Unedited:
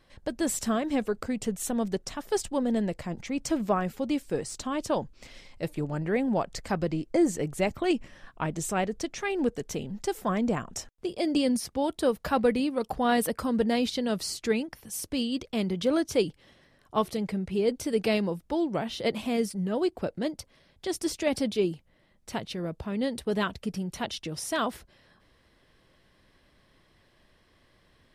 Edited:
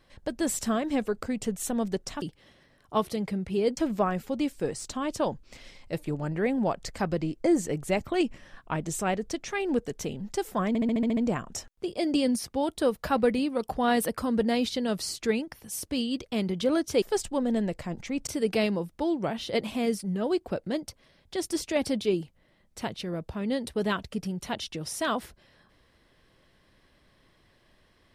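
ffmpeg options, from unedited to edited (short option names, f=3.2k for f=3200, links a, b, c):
-filter_complex "[0:a]asplit=12[a][b][c][d][e][f][g][h][i][j][k][l];[a]atrim=end=2.222[m];[b]atrim=start=16.228:end=17.782[n];[c]atrim=start=3.468:end=10.452[o];[d]atrim=start=10.378:end=10.452[p];[e]atrim=start=10.378:end=10.452[q];[f]atrim=start=10.378:end=10.452[r];[g]atrim=start=10.378:end=10.452[s];[h]atrim=start=10.378:end=10.452[t];[i]atrim=start=10.378:end=10.452[u];[j]atrim=start=10.378:end=16.232[v];[k]atrim=start=2.218:end=3.472[w];[l]atrim=start=17.778[x];[m][n]acrossfade=d=0.004:c1=hsin:c2=hsin[y];[y][o]acrossfade=d=0.004:c1=hsin:c2=hsin[z];[z][p]acrossfade=d=0.004:c1=hsin:c2=hsin[aa];[aa][q]acrossfade=d=0.004:c1=hsin:c2=hsin[ab];[ab][r]acrossfade=d=0.004:c1=hsin:c2=hsin[ac];[ac][s]acrossfade=d=0.004:c1=hsin:c2=hsin[ad];[ad][t]acrossfade=d=0.004:c1=hsin:c2=hsin[ae];[ae][u]acrossfade=d=0.004:c1=hsin:c2=hsin[af];[af][v]acrossfade=d=0.004:c1=hsin:c2=hsin[ag];[ag][w]acrossfade=d=0.004:c1=hsin:c2=hsin[ah];[ah][x]acrossfade=d=0.004:c1=hsin:c2=hsin"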